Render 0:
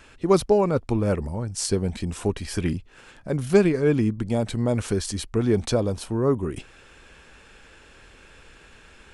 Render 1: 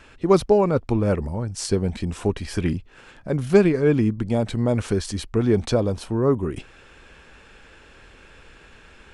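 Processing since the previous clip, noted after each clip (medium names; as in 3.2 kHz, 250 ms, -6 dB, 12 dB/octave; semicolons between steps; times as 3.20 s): treble shelf 6.9 kHz -9 dB; trim +2 dB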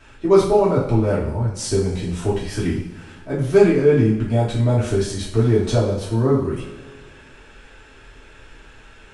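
two-slope reverb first 0.51 s, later 2.2 s, from -18 dB, DRR -7 dB; trim -5.5 dB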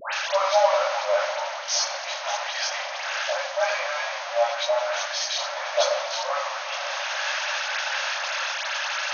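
jump at every zero crossing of -18.5 dBFS; brick-wall FIR band-pass 530–6700 Hz; phase dispersion highs, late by 134 ms, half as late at 1.5 kHz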